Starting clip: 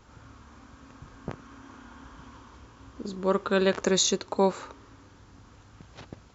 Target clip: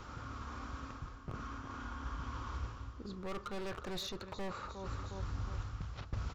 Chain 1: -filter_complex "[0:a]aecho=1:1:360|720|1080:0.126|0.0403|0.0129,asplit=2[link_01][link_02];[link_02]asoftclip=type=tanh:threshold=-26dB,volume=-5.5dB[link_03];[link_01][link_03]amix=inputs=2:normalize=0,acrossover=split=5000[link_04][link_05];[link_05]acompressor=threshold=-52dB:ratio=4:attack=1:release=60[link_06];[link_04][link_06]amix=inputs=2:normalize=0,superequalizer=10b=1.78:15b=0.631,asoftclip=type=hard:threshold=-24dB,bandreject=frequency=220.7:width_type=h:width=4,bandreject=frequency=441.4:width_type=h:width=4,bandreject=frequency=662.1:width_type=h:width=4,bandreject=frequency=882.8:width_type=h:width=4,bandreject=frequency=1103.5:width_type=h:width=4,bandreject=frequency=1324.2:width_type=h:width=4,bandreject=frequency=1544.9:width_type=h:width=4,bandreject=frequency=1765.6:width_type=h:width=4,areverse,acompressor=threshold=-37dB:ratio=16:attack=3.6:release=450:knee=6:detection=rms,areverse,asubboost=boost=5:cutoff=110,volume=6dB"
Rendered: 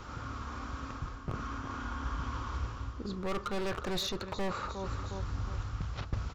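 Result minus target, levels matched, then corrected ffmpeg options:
downward compressor: peak gain reduction −7 dB
-filter_complex "[0:a]aecho=1:1:360|720|1080:0.126|0.0403|0.0129,asplit=2[link_01][link_02];[link_02]asoftclip=type=tanh:threshold=-26dB,volume=-5.5dB[link_03];[link_01][link_03]amix=inputs=2:normalize=0,acrossover=split=5000[link_04][link_05];[link_05]acompressor=threshold=-52dB:ratio=4:attack=1:release=60[link_06];[link_04][link_06]amix=inputs=2:normalize=0,superequalizer=10b=1.78:15b=0.631,asoftclip=type=hard:threshold=-24dB,bandreject=frequency=220.7:width_type=h:width=4,bandreject=frequency=441.4:width_type=h:width=4,bandreject=frequency=662.1:width_type=h:width=4,bandreject=frequency=882.8:width_type=h:width=4,bandreject=frequency=1103.5:width_type=h:width=4,bandreject=frequency=1324.2:width_type=h:width=4,bandreject=frequency=1544.9:width_type=h:width=4,bandreject=frequency=1765.6:width_type=h:width=4,areverse,acompressor=threshold=-44.5dB:ratio=16:attack=3.6:release=450:knee=6:detection=rms,areverse,asubboost=boost=5:cutoff=110,volume=6dB"

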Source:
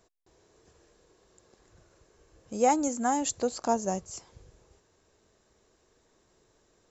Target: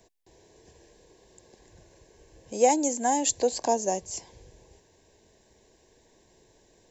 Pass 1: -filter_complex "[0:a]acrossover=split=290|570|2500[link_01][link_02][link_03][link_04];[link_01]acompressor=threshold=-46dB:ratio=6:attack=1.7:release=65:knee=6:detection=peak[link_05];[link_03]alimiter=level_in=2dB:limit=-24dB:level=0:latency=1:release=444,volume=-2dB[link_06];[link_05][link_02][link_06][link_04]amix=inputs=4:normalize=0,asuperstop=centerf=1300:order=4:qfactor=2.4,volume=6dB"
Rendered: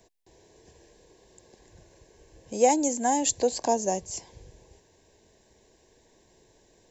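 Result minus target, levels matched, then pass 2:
downward compressor: peak gain reduction −6 dB
-filter_complex "[0:a]acrossover=split=290|570|2500[link_01][link_02][link_03][link_04];[link_01]acompressor=threshold=-53.5dB:ratio=6:attack=1.7:release=65:knee=6:detection=peak[link_05];[link_03]alimiter=level_in=2dB:limit=-24dB:level=0:latency=1:release=444,volume=-2dB[link_06];[link_05][link_02][link_06][link_04]amix=inputs=4:normalize=0,asuperstop=centerf=1300:order=4:qfactor=2.4,volume=6dB"

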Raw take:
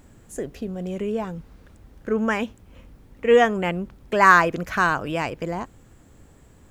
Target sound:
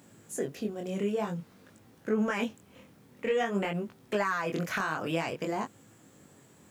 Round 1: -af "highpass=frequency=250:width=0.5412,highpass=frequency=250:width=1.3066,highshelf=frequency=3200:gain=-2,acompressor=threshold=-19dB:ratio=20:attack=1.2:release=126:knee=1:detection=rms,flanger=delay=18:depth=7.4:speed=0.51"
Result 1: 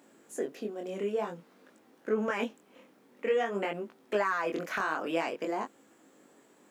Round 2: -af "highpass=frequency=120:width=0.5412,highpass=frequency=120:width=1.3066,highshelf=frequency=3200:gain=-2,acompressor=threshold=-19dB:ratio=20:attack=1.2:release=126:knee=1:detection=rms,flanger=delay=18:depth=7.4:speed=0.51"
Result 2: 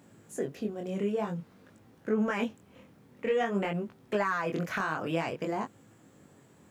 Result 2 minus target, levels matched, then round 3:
8,000 Hz band −5.5 dB
-af "highpass=frequency=120:width=0.5412,highpass=frequency=120:width=1.3066,highshelf=frequency=3200:gain=5,acompressor=threshold=-19dB:ratio=20:attack=1.2:release=126:knee=1:detection=rms,flanger=delay=18:depth=7.4:speed=0.51"

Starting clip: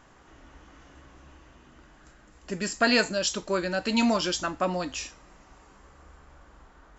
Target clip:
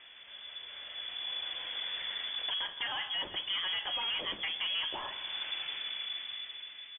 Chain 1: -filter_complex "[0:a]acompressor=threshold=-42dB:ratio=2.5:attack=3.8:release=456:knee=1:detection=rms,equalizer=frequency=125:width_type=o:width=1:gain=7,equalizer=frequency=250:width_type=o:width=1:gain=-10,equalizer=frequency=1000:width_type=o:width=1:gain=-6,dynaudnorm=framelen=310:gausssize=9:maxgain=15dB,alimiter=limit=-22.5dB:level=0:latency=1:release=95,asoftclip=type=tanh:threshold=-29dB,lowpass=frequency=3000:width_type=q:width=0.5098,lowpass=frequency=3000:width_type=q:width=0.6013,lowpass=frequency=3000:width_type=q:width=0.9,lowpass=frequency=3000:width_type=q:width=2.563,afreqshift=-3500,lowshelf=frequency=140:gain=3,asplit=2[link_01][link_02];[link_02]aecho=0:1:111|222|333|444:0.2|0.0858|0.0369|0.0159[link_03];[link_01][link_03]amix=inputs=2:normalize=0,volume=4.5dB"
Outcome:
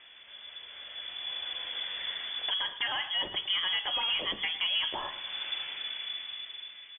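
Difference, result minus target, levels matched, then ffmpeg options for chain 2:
echo 56 ms early; soft clipping: distortion −7 dB
-filter_complex "[0:a]acompressor=threshold=-42dB:ratio=2.5:attack=3.8:release=456:knee=1:detection=rms,equalizer=frequency=125:width_type=o:width=1:gain=7,equalizer=frequency=250:width_type=o:width=1:gain=-10,equalizer=frequency=1000:width_type=o:width=1:gain=-6,dynaudnorm=framelen=310:gausssize=9:maxgain=15dB,alimiter=limit=-22.5dB:level=0:latency=1:release=95,asoftclip=type=tanh:threshold=-36dB,lowpass=frequency=3000:width_type=q:width=0.5098,lowpass=frequency=3000:width_type=q:width=0.6013,lowpass=frequency=3000:width_type=q:width=0.9,lowpass=frequency=3000:width_type=q:width=2.563,afreqshift=-3500,lowshelf=frequency=140:gain=3,asplit=2[link_01][link_02];[link_02]aecho=0:1:167|334|501|668:0.2|0.0858|0.0369|0.0159[link_03];[link_01][link_03]amix=inputs=2:normalize=0,volume=4.5dB"

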